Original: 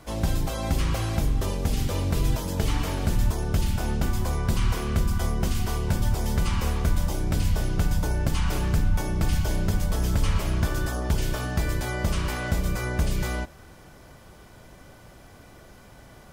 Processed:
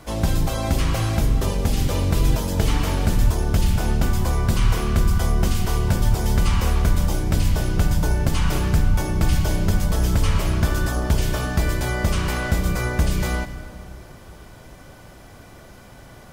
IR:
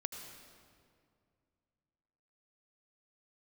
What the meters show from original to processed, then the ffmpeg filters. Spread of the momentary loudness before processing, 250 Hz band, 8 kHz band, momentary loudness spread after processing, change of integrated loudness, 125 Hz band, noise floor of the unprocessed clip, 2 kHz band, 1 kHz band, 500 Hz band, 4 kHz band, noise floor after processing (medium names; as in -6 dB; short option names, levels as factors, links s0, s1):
2 LU, +4.5 dB, +4.5 dB, 2 LU, +5.0 dB, +5.0 dB, -49 dBFS, +5.0 dB, +4.5 dB, +4.5 dB, +4.5 dB, -44 dBFS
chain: -filter_complex "[0:a]asplit=2[s0][s1];[1:a]atrim=start_sample=2205[s2];[s1][s2]afir=irnorm=-1:irlink=0,volume=0.841[s3];[s0][s3]amix=inputs=2:normalize=0"